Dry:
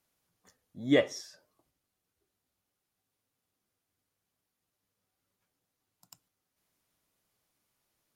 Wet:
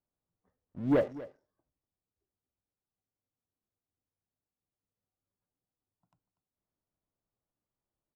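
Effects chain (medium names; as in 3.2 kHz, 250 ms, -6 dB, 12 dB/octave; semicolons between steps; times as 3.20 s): low-pass 1 kHz 12 dB/octave; bass shelf 76 Hz +8 dB; waveshaping leveller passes 2; delay 242 ms -17.5 dB; trim -5 dB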